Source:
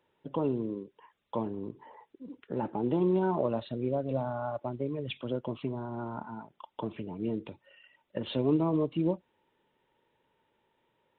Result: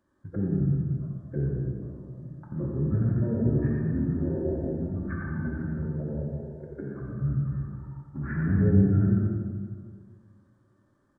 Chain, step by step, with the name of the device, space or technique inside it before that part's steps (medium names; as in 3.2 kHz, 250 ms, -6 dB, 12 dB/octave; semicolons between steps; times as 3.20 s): 6.23–7.00 s: high-pass 880 Hz -> 270 Hz 12 dB/octave; treble shelf 2.9 kHz +5.5 dB; algorithmic reverb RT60 1.3 s, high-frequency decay 0.85×, pre-delay 35 ms, DRR 2 dB; monster voice (pitch shift -8 st; formant shift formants -5 st; bass shelf 150 Hz +5 dB; delay 87 ms -7.5 dB; reverberation RT60 1.8 s, pre-delay 5 ms, DRR 0.5 dB); trim -2 dB